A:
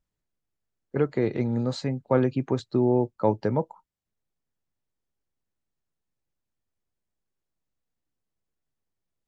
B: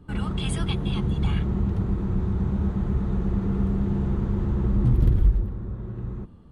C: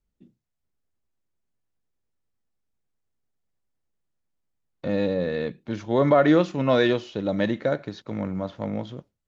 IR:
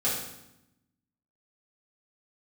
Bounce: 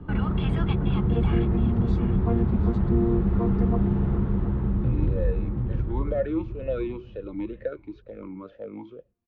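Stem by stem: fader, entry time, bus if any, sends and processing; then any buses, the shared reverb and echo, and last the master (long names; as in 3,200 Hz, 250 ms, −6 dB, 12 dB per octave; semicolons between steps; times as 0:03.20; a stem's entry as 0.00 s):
−3.0 dB, 0.15 s, no send, echo send −16 dB, channel vocoder with a chord as carrier bare fifth, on A#3
+1.5 dB, 0.00 s, no send, echo send −12 dB, low-pass filter 2,700 Hz 12 dB per octave; automatic ducking −7 dB, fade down 0.85 s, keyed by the third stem
−2.0 dB, 0.00 s, no send, no echo send, formant filter swept between two vowels e-u 2.1 Hz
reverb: not used
echo: repeating echo 719 ms, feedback 22%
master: high-shelf EQ 5,400 Hz −5.5 dB; multiband upward and downward compressor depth 40%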